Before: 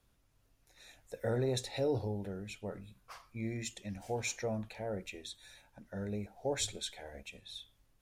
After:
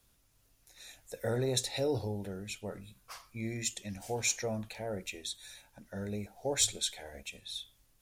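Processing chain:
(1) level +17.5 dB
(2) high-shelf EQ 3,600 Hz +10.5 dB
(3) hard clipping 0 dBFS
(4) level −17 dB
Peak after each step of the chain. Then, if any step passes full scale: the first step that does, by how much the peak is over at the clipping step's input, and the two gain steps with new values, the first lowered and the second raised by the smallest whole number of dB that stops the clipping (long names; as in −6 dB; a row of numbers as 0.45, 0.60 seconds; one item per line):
−4.5, +4.0, 0.0, −17.0 dBFS
step 2, 4.0 dB
step 1 +13.5 dB, step 4 −13 dB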